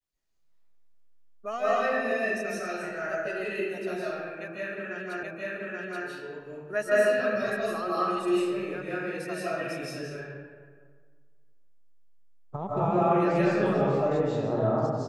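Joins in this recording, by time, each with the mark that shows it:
0:05.23: the same again, the last 0.83 s

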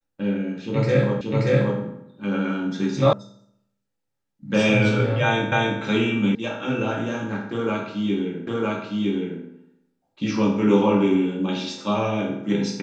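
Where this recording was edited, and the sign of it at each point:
0:01.21: the same again, the last 0.58 s
0:03.13: cut off before it has died away
0:05.52: the same again, the last 0.28 s
0:06.35: cut off before it has died away
0:08.47: the same again, the last 0.96 s

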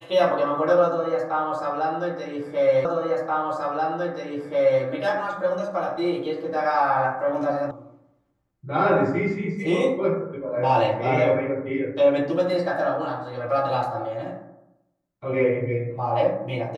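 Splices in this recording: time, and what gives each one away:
0:02.85: the same again, the last 1.98 s
0:07.71: cut off before it has died away

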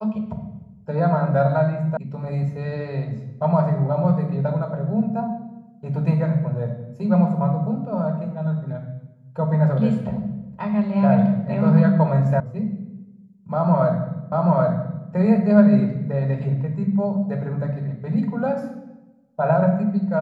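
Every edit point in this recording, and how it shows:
0:01.97: cut off before it has died away
0:12.40: cut off before it has died away
0:14.32: the same again, the last 0.78 s

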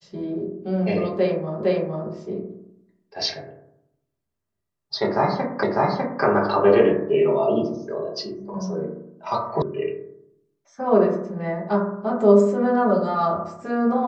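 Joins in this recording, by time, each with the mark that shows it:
0:01.63: the same again, the last 0.46 s
0:05.63: the same again, the last 0.6 s
0:09.62: cut off before it has died away

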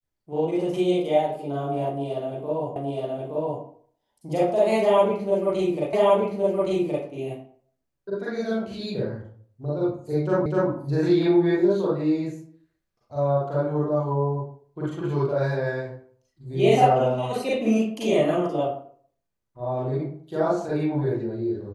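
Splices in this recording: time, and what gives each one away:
0:02.76: the same again, the last 0.87 s
0:05.93: the same again, the last 1.12 s
0:10.46: the same again, the last 0.25 s

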